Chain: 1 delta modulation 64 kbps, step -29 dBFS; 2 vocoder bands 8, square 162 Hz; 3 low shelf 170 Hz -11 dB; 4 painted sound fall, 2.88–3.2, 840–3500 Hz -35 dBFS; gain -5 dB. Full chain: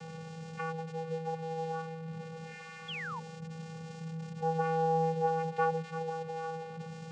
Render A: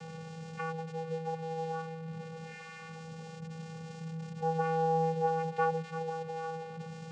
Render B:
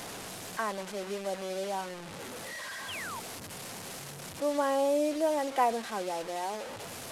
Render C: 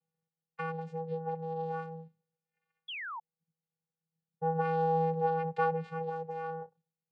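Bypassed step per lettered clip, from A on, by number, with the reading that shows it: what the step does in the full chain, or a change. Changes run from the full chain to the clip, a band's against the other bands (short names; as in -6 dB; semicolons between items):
4, 4 kHz band -4.0 dB; 2, 125 Hz band -15.0 dB; 1, 4 kHz band -1.5 dB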